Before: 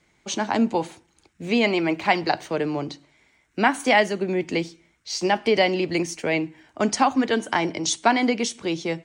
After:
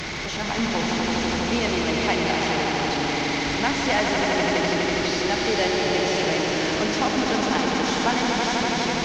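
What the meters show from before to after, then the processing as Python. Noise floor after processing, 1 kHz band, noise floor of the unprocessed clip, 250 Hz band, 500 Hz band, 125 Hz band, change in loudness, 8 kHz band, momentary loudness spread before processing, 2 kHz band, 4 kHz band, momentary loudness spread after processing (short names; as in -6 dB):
-28 dBFS, 0.0 dB, -65 dBFS, 0.0 dB, 0.0 dB, +3.5 dB, +0.5 dB, +1.0 dB, 11 LU, +2.0 dB, +5.0 dB, 2 LU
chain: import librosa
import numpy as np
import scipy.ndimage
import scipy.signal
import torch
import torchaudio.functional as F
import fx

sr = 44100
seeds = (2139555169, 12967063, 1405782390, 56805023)

y = fx.delta_mod(x, sr, bps=32000, step_db=-18.0)
y = fx.cheby_harmonics(y, sr, harmonics=(2, 6), levels_db=(-23, -38), full_scale_db=-4.5)
y = fx.echo_swell(y, sr, ms=82, loudest=5, wet_db=-5.5)
y = F.gain(torch.from_numpy(y), -6.5).numpy()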